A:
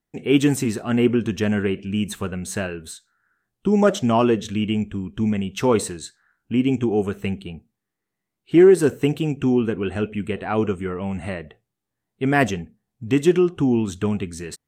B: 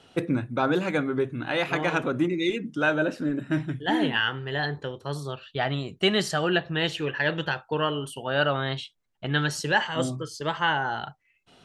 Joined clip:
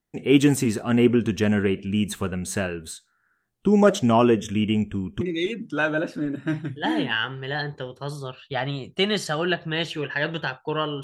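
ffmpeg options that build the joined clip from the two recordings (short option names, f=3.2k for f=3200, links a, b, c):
-filter_complex "[0:a]asettb=1/sr,asplit=3[a][b][c];[a]atrim=end=4.154[d];[b]atrim=start=4.15:end=5.21,asetpts=PTS-STARTPTS,afade=t=in:d=0.004:c=qsin,afade=t=out:st=1.056:d=0.004:c=qsin,asuperstop=centerf=4300:order=12:qfactor=3.1[e];[c]atrim=start=5.206[f];[d][e]acrossfade=d=0.004:c1=hsin:c2=qsin[g];[g][f]acrossfade=d=0.004:c1=qsin:c2=hsin,apad=whole_dur=11.03,atrim=end=11.03,atrim=end=5.212[h];[1:a]atrim=start=2.248:end=8.07[i];[h][i]acrossfade=d=0.004:c1=hsin:c2=hsin"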